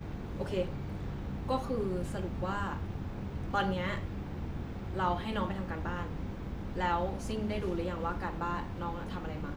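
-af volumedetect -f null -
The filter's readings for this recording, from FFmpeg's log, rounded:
mean_volume: -34.7 dB
max_volume: -18.3 dB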